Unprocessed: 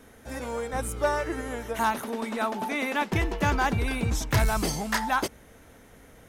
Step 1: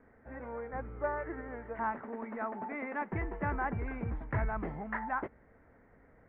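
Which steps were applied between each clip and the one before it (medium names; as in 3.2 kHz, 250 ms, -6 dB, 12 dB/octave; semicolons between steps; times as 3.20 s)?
elliptic low-pass 2 kHz, stop band 70 dB; trim -8.5 dB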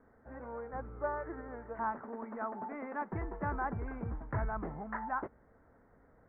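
resonant high shelf 1.8 kHz -8.5 dB, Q 1.5; trim -2.5 dB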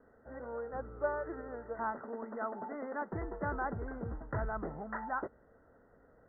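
rippled Chebyshev low-pass 2 kHz, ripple 6 dB; trim +3.5 dB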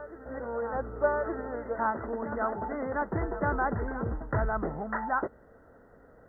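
reverse echo 1169 ms -12 dB; trim +7.5 dB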